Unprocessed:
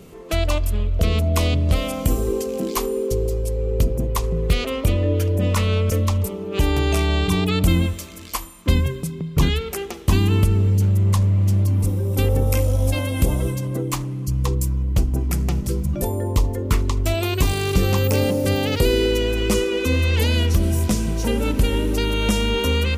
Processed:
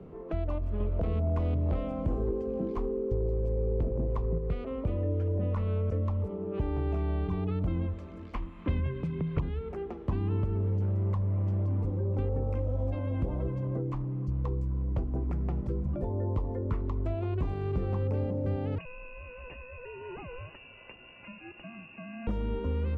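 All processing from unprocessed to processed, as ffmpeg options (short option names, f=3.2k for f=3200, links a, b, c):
-filter_complex "[0:a]asettb=1/sr,asplit=3[a][b][c];[a]atrim=end=0.804[d];[b]atrim=start=0.8:end=4.38,asetpts=PTS-STARTPTS,afade=t=in:d=0.004:c=qsin,afade=t=out:st=3.576:d=0.004:c=qsin,acontrast=63,asoftclip=type=hard:threshold=-7.5dB[e];[c]atrim=start=4.376[f];[d][e]acrossfade=d=0.004:c1=hsin:c2=qsin[g];[g][f]acrossfade=d=0.004:c1=qsin:c2=hsin,asettb=1/sr,asplit=3[h][i][j];[h]atrim=end=8.344[k];[i]atrim=start=8.34:end=9.4,asetpts=PTS-STARTPTS,afade=t=in:d=0.004:c=qsin,afade=t=out:st=1.056:d=0.004:c=qsin,equalizer=f=2.6k:t=o:w=1.9:g=14,acontrast=67[l];[j]atrim=start=9.396[m];[k][l]acrossfade=d=0.004:c1=hsin:c2=qsin[n];[n][m]acrossfade=d=0.004:c1=qsin:c2=hsin,asettb=1/sr,asplit=3[o][p][q];[o]atrim=end=18.784[r];[p]atrim=start=18.78:end=22.27,asetpts=PTS-STARTPTS,afade=t=in:d=0.004:c=qsin,afade=t=out:st=3.486:d=0.004:c=qsin,highpass=f=150:w=0.5412,highpass=f=150:w=1.3066,lowpass=f=2.6k:t=q:w=0.5098,lowpass=f=2.6k:t=q:w=0.6013,lowpass=f=2.6k:t=q:w=0.9,lowpass=f=2.6k:t=q:w=2.563,afreqshift=-3000[s];[q]atrim=start=22.266[t];[r][s]acrossfade=d=0.004:c1=hsin:c2=qsin[u];[u][t]acrossfade=d=0.004:c1=qsin:c2=hsin,acrossover=split=120|310[v][w][x];[v]acompressor=threshold=-28dB:ratio=4[y];[w]acompressor=threshold=-36dB:ratio=4[z];[x]acompressor=threshold=-33dB:ratio=4[aa];[y][z][aa]amix=inputs=3:normalize=0,lowpass=1.1k,volume=-3dB"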